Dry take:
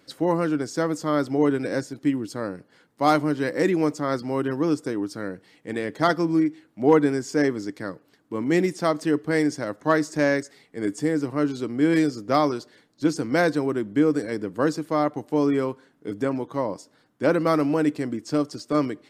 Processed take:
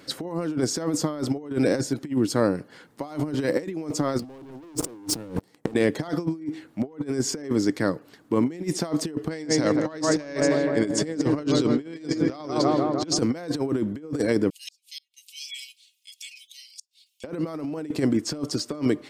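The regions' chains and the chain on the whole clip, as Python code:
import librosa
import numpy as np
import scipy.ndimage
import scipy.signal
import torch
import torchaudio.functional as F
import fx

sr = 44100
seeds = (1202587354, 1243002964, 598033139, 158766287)

y = fx.chain(x, sr, fx.highpass(hz=72.0, slope=24),
    fx.peak_eq(hz=2700.0, db=-14.0, octaves=1.5),
    fx.leveller(passes=5), at=(4.19, 5.74))
y = fx.chain(y, sr, fx.lowpass(hz=5400.0, slope=12),
    fx.high_shelf(hz=3000.0, db=10.0),
    fx.echo_filtered(ms=157, feedback_pct=71, hz=1800.0, wet_db=-9.0), at=(9.29, 13.19))
y = fx.chain(y, sr, fx.steep_highpass(hz=2500.0, slope=72),
    fx.comb(ms=3.6, depth=0.7),
    fx.gate_flip(shuts_db=-33.0, range_db=-35), at=(14.5, 17.24))
y = fx.dynamic_eq(y, sr, hz=1600.0, q=1.2, threshold_db=-40.0, ratio=4.0, max_db=-5)
y = fx.over_compress(y, sr, threshold_db=-28.0, ratio=-0.5)
y = y * 10.0 ** (3.0 / 20.0)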